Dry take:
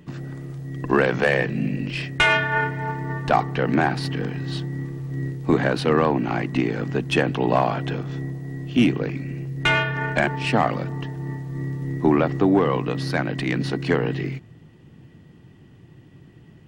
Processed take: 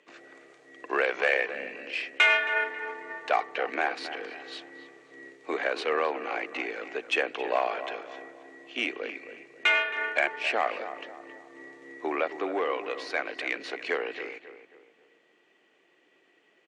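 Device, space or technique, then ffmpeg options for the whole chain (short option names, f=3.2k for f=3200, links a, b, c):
phone speaker on a table: -filter_complex "[0:a]highpass=f=440:w=0.5412,highpass=f=440:w=1.3066,equalizer=f=910:t=q:w=4:g=-5,equalizer=f=2.3k:t=q:w=4:g=7,equalizer=f=5.1k:t=q:w=4:g=-4,lowpass=f=7.9k:w=0.5412,lowpass=f=7.9k:w=1.3066,asplit=2[a][b];[b]adelay=270,lowpass=f=2.1k:p=1,volume=-11dB,asplit=2[c][d];[d]adelay=270,lowpass=f=2.1k:p=1,volume=0.41,asplit=2[e][f];[f]adelay=270,lowpass=f=2.1k:p=1,volume=0.41,asplit=2[g][h];[h]adelay=270,lowpass=f=2.1k:p=1,volume=0.41[i];[a][c][e][g][i]amix=inputs=5:normalize=0,volume=-5dB"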